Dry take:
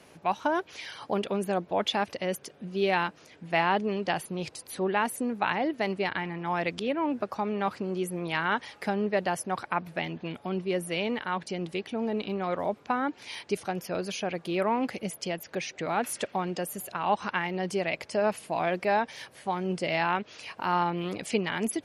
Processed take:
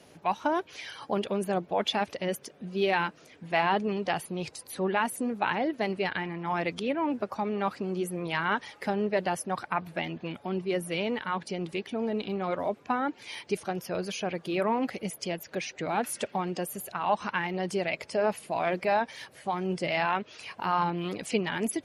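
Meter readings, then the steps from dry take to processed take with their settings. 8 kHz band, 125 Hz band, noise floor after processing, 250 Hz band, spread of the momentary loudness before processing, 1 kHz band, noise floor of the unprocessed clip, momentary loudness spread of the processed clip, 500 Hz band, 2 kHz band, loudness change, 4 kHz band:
−0.5 dB, −0.5 dB, −56 dBFS, −0.5 dB, 7 LU, −0.5 dB, −56 dBFS, 7 LU, −0.5 dB, −0.5 dB, −0.5 dB, −0.5 dB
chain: spectral magnitudes quantised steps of 15 dB

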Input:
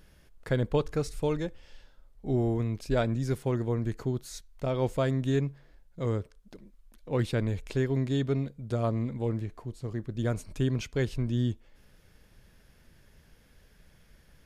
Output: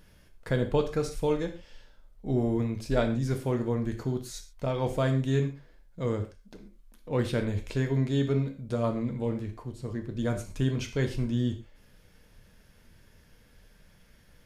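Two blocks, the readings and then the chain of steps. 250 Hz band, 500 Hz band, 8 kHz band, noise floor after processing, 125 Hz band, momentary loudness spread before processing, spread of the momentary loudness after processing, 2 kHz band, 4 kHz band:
+1.5 dB, +1.0 dB, +1.5 dB, −59 dBFS, 0.0 dB, 8 LU, 10 LU, +1.5 dB, +1.5 dB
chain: reverb whose tail is shaped and stops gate 160 ms falling, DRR 4.5 dB

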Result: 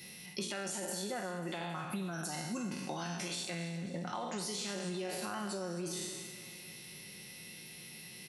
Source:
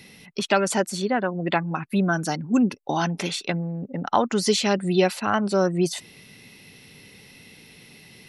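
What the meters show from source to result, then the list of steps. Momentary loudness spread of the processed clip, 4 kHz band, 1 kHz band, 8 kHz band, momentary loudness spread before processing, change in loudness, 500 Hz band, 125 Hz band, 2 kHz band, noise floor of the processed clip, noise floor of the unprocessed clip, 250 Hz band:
10 LU, −11.0 dB, −16.5 dB, −7.5 dB, 7 LU, −16.0 dB, −17.0 dB, −14.5 dB, −14.5 dB, −50 dBFS, −50 dBFS, −16.5 dB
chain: peak hold with a decay on every bin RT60 0.83 s
high-pass filter 48 Hz
high-shelf EQ 5,100 Hz +11.5 dB
comb filter 5.6 ms, depth 48%
brickwall limiter −12.5 dBFS, peak gain reduction 10 dB
downward compressor 6 to 1, threshold −28 dBFS, peak gain reduction 11 dB
on a send: repeating echo 271 ms, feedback 57%, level −15 dB
on the sum: level that may fall only so fast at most 81 dB per second
level −8.5 dB

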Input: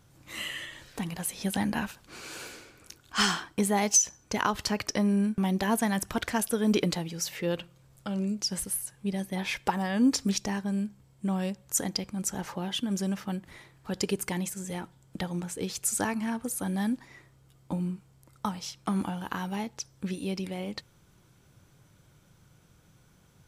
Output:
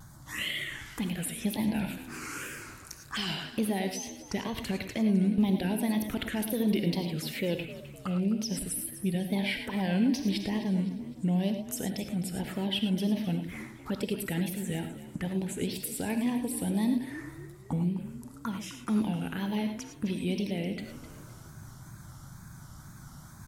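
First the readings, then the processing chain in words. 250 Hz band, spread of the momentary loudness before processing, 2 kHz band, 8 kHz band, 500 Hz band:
+1.0 dB, 13 LU, −2.5 dB, −9.0 dB, −1.5 dB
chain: in parallel at +1 dB: downward compressor, threshold −41 dBFS, peak gain reduction 21 dB
on the sum: brickwall limiter −19.5 dBFS, peak gain reduction 8.5 dB
reversed playback
upward compression, threshold −38 dBFS
reversed playback
phaser swept by the level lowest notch 380 Hz, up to 1,300 Hz, full sweep at −27.5 dBFS
tape wow and flutter 150 cents
echo with shifted repeats 257 ms, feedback 41%, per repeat +50 Hz, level −15 dB
reverb whose tail is shaped and stops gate 130 ms rising, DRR 6.5 dB

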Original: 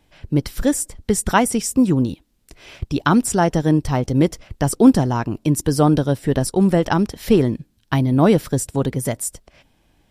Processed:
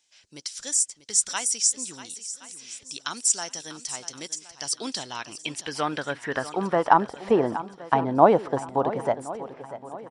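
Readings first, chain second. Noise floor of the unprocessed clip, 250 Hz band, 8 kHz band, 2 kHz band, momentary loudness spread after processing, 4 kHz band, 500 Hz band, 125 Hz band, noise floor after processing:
−62 dBFS, −15.0 dB, +2.0 dB, −5.0 dB, 16 LU, −0.5 dB, −5.0 dB, −19.0 dB, −55 dBFS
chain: band-pass filter sweep 6,400 Hz → 830 Hz, 0:04.40–0:07.12
downsampling to 22,050 Hz
feedback echo with a long and a short gap by turns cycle 1,069 ms, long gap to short 1.5 to 1, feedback 34%, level −14 dB
level +7.5 dB

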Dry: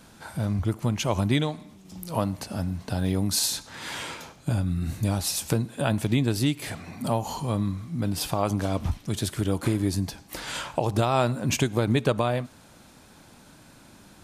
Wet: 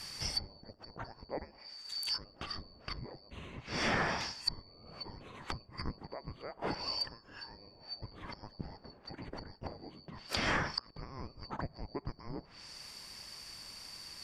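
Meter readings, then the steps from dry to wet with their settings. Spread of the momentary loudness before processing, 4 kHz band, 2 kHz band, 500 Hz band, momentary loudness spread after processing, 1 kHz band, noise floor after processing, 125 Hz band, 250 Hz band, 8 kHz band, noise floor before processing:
10 LU, −5.0 dB, −4.0 dB, −15.5 dB, 16 LU, −10.5 dB, −60 dBFS, −20.5 dB, −18.5 dB, −17.0 dB, −52 dBFS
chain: band-splitting scrambler in four parts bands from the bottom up 2341
speech leveller within 3 dB 0.5 s
treble cut that deepens with the level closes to 500 Hz, closed at −23.5 dBFS
parametric band 1,600 Hz +2 dB
level +3 dB

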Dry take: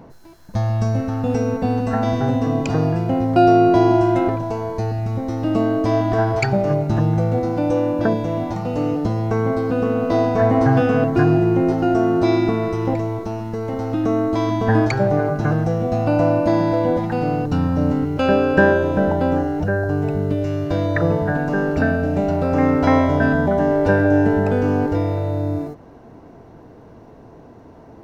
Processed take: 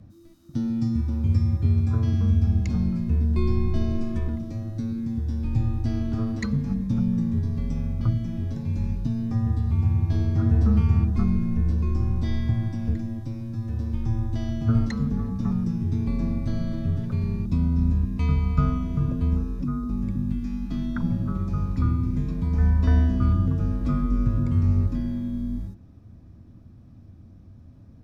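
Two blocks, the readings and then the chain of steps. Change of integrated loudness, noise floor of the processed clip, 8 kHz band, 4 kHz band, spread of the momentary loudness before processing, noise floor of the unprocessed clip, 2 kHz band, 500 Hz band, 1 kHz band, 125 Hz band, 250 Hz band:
−6.5 dB, −48 dBFS, can't be measured, below −10 dB, 8 LU, −43 dBFS, −19.5 dB, −22.5 dB, −20.0 dB, −1.5 dB, −7.5 dB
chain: drawn EQ curve 290 Hz 0 dB, 640 Hz −10 dB, 6,200 Hz −1 dB
frequency shifter −340 Hz
parametric band 93 Hz +11 dB 1 octave
level −7.5 dB

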